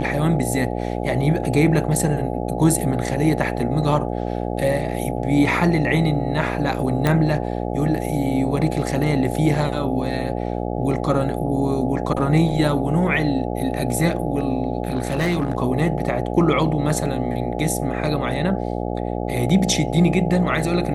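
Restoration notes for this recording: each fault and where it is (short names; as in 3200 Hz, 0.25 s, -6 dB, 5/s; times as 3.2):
buzz 60 Hz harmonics 14 -25 dBFS
7.07 pop -6 dBFS
14.83–15.55 clipped -16 dBFS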